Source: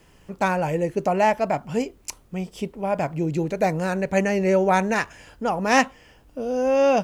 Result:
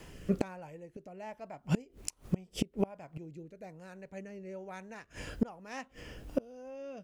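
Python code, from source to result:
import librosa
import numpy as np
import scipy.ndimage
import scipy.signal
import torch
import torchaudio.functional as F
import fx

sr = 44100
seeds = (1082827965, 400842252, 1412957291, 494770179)

y = fx.rotary(x, sr, hz=1.2)
y = fx.gate_flip(y, sr, shuts_db=-24.0, range_db=-30)
y = y * 10.0 ** (7.5 / 20.0)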